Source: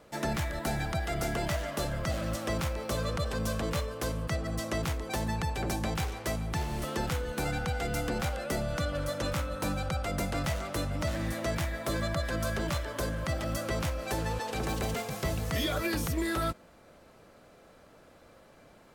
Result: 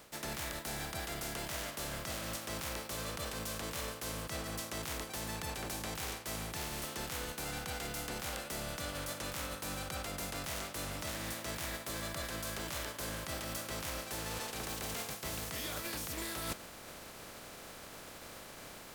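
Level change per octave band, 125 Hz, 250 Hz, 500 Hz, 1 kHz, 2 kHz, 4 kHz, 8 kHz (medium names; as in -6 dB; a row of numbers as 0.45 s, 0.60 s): -12.5 dB, -10.5 dB, -10.0 dB, -7.5 dB, -5.5 dB, -2.0 dB, +0.5 dB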